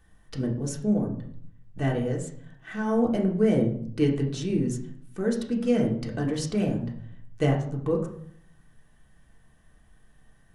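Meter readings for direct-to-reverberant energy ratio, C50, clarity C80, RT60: -1.5 dB, 7.5 dB, 11.5 dB, 0.65 s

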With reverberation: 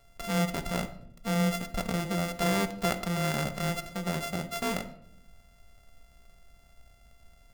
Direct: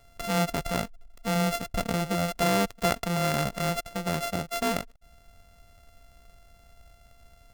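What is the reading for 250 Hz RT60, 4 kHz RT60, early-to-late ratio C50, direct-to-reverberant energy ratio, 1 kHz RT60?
1.0 s, 0.45 s, 13.0 dB, 8.0 dB, 0.60 s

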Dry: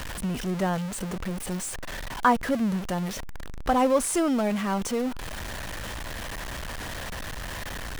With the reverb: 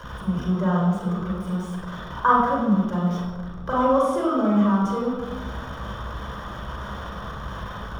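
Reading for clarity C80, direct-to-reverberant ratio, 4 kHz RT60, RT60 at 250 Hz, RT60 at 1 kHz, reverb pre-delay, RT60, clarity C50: 1.5 dB, -6.0 dB, 0.80 s, 1.6 s, 1.1 s, 35 ms, 1.2 s, -1.5 dB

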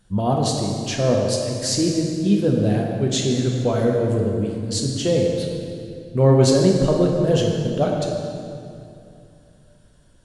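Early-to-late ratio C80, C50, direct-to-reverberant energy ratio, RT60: 2.5 dB, 1.5 dB, -0.5 dB, 2.6 s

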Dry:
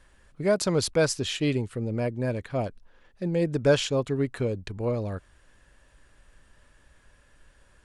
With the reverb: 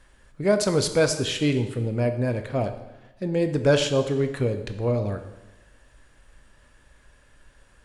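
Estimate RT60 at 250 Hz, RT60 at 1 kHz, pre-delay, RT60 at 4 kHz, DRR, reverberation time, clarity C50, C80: 1.1 s, 1.1 s, 5 ms, 1.0 s, 7.0 dB, 1.1 s, 10.0 dB, 12.0 dB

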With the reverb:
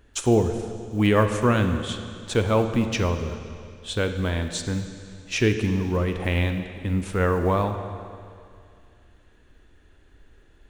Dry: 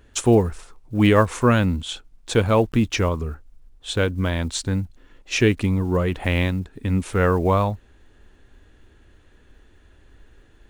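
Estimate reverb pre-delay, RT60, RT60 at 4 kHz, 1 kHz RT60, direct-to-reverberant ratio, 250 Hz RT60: 37 ms, 2.3 s, 2.3 s, 2.3 s, 7.0 dB, 2.3 s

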